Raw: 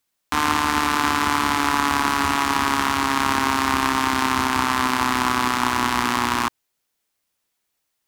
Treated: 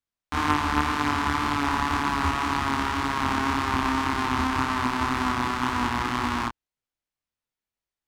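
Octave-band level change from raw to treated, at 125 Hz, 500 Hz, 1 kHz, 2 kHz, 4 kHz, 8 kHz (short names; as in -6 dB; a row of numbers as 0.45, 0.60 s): +2.0, -4.0, -5.0, -5.5, -7.5, -11.0 dB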